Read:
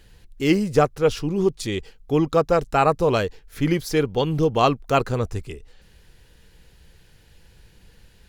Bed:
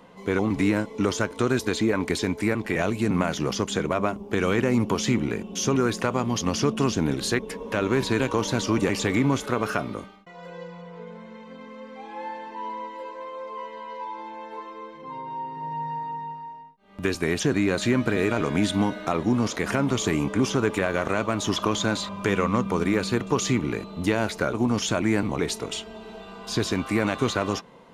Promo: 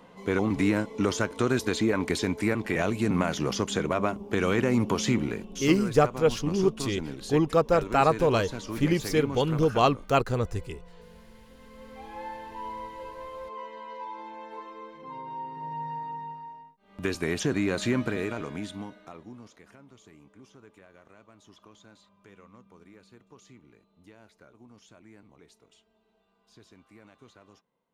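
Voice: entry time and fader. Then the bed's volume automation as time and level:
5.20 s, -3.5 dB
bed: 5.19 s -2 dB
5.81 s -12 dB
11.56 s -12 dB
11.97 s -4 dB
17.98 s -4 dB
19.83 s -30 dB

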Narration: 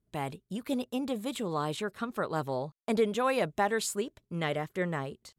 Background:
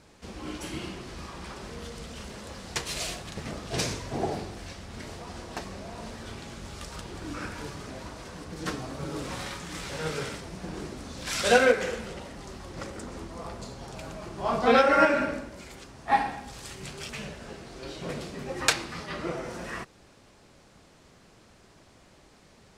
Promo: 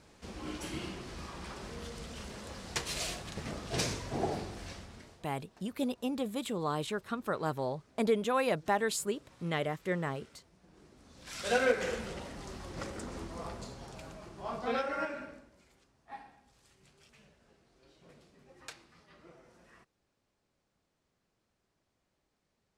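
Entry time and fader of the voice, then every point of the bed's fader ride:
5.10 s, -1.5 dB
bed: 4.77 s -3.5 dB
5.36 s -25 dB
10.67 s -25 dB
11.93 s -2.5 dB
13.42 s -2.5 dB
16.07 s -24 dB

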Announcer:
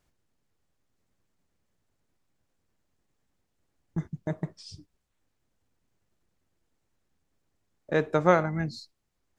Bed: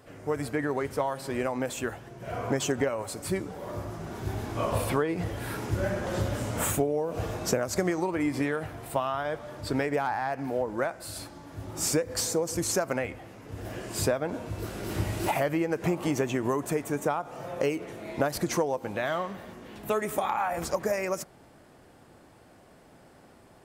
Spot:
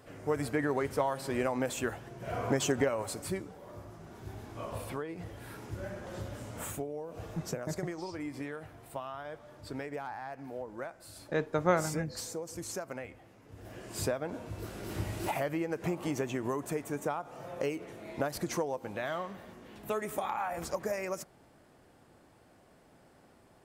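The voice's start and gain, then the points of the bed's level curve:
3.40 s, -6.0 dB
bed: 3.12 s -1.5 dB
3.62 s -11.5 dB
13.56 s -11.5 dB
14.02 s -6 dB

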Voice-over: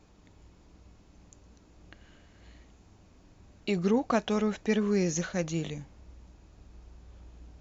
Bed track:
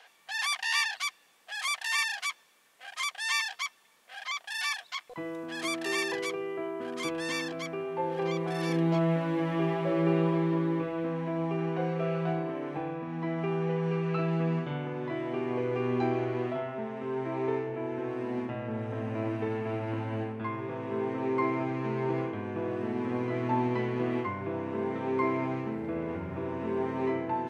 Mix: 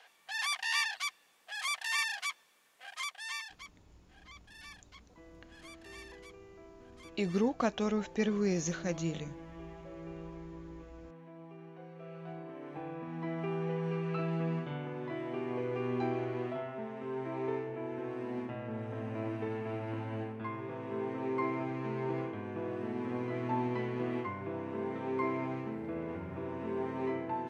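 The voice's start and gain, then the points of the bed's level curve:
3.50 s, -4.0 dB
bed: 2.89 s -3.5 dB
3.85 s -19.5 dB
11.89 s -19.5 dB
13.02 s -5 dB

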